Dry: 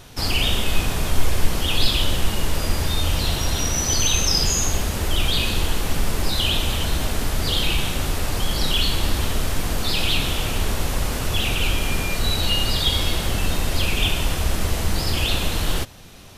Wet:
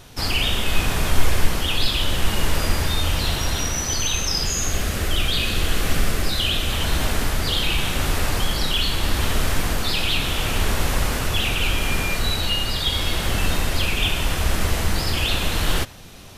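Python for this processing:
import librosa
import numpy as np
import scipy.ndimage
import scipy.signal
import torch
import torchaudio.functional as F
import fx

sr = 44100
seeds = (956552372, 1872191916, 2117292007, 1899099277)

y = fx.peak_eq(x, sr, hz=920.0, db=-10.0, octaves=0.22, at=(4.48, 6.72))
y = fx.rider(y, sr, range_db=3, speed_s=0.5)
y = fx.dynamic_eq(y, sr, hz=1700.0, q=0.91, threshold_db=-38.0, ratio=4.0, max_db=4)
y = y * librosa.db_to_amplitude(-1.0)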